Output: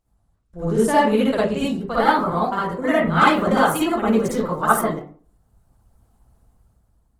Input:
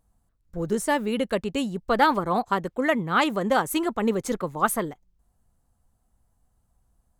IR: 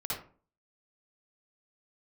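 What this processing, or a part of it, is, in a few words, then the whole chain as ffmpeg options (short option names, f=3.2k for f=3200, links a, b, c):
speakerphone in a meeting room: -filter_complex "[1:a]atrim=start_sample=2205[a];[0:a][a]afir=irnorm=-1:irlink=0,dynaudnorm=f=200:g=7:m=9dB,volume=-1dB" -ar 48000 -c:a libopus -b:a 16k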